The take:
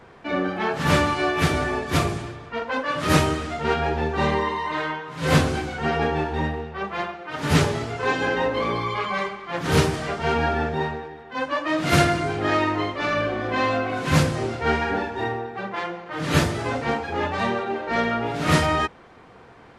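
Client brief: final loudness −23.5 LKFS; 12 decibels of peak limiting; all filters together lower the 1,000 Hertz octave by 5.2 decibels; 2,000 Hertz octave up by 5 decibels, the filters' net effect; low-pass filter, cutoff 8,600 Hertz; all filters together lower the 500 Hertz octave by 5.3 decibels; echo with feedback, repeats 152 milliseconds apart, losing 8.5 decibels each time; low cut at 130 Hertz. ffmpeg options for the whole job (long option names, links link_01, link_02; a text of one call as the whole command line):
ffmpeg -i in.wav -af "highpass=130,lowpass=8600,equalizer=frequency=500:width_type=o:gain=-5,equalizer=frequency=1000:width_type=o:gain=-8.5,equalizer=frequency=2000:width_type=o:gain=9,alimiter=limit=-16.5dB:level=0:latency=1,aecho=1:1:152|304|456|608:0.376|0.143|0.0543|0.0206,volume=2dB" out.wav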